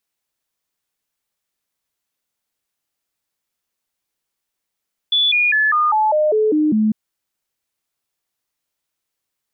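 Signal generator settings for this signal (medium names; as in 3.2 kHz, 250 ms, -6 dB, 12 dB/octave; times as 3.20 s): stepped sine 3.45 kHz down, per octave 2, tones 9, 0.20 s, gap 0.00 s -12.5 dBFS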